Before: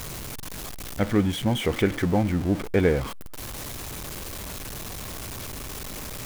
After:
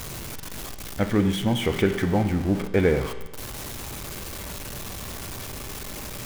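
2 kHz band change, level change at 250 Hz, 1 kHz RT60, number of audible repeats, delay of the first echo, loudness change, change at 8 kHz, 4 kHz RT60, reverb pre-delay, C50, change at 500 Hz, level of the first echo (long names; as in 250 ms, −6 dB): +1.0 dB, +1.0 dB, 1.1 s, no echo audible, no echo audible, +0.5 dB, 0.0 dB, 1.1 s, 5 ms, 10.0 dB, +1.0 dB, no echo audible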